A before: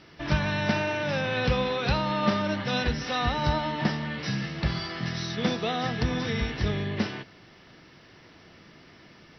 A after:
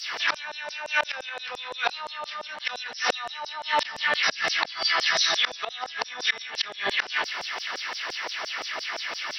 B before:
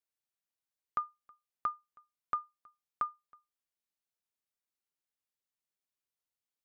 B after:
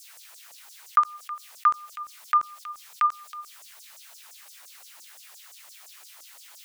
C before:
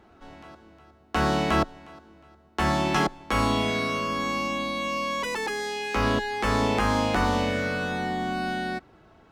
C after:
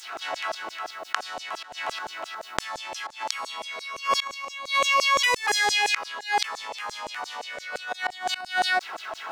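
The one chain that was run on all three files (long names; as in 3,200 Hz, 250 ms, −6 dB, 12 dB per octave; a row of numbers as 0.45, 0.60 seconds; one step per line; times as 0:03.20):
gate with flip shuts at −19 dBFS, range −30 dB
auto-filter high-pass saw down 5.8 Hz 570–7,500 Hz
envelope flattener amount 50%
loudness normalisation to −27 LKFS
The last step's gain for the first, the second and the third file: +8.5, +8.0, +5.0 decibels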